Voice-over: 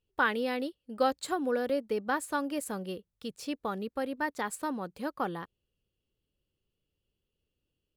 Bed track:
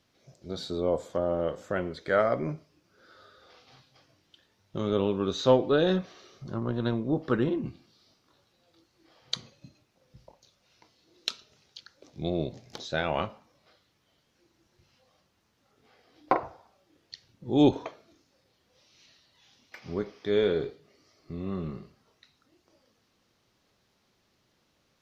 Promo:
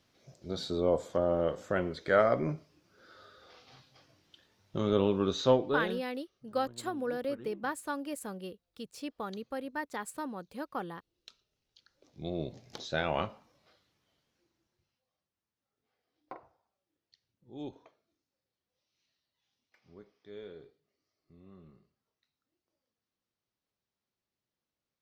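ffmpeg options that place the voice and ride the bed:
-filter_complex "[0:a]adelay=5550,volume=-4.5dB[a];[1:a]volume=19dB,afade=t=out:st=5.24:d=0.82:silence=0.0841395,afade=t=in:st=11.64:d=1.17:silence=0.105925,afade=t=out:st=13.46:d=1.53:silence=0.112202[b];[a][b]amix=inputs=2:normalize=0"

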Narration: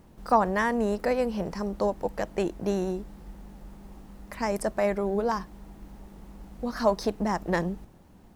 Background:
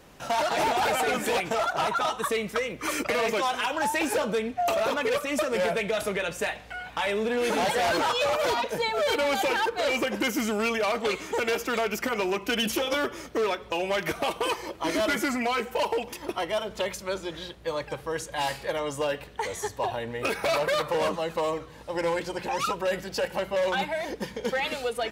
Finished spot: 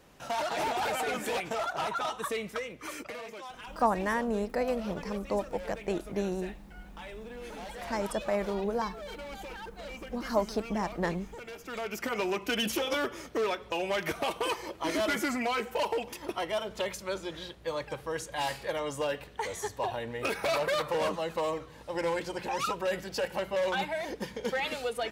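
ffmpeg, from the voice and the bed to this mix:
-filter_complex "[0:a]adelay=3500,volume=-4.5dB[a];[1:a]volume=8dB,afade=t=out:st=2.4:d=0.86:silence=0.266073,afade=t=in:st=11.57:d=0.62:silence=0.199526[b];[a][b]amix=inputs=2:normalize=0"

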